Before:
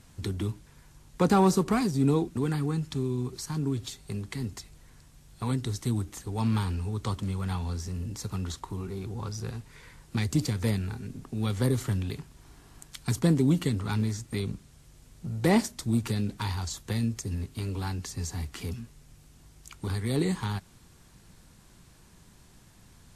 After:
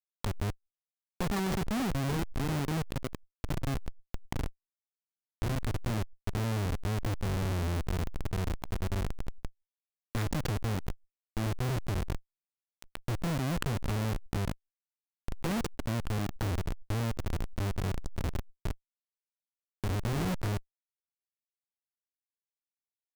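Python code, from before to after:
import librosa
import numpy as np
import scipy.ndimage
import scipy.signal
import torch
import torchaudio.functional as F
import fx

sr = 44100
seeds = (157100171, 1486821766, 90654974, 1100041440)

y = fx.hpss(x, sr, part='harmonic', gain_db=4, at=(6.84, 9.17))
y = fx.schmitt(y, sr, flips_db=-26.5)
y = fx.pre_swell(y, sr, db_per_s=80.0)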